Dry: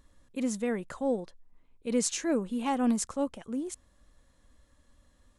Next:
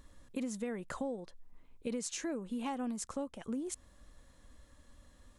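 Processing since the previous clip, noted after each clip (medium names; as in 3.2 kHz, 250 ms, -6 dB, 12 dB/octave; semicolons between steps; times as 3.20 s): compression 12:1, threshold -38 dBFS, peak gain reduction 16.5 dB; trim +3.5 dB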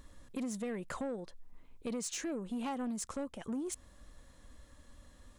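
saturation -34 dBFS, distortion -15 dB; trim +2.5 dB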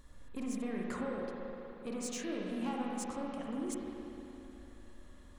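spring tank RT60 3.2 s, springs 38/53 ms, chirp 50 ms, DRR -3 dB; trim -3.5 dB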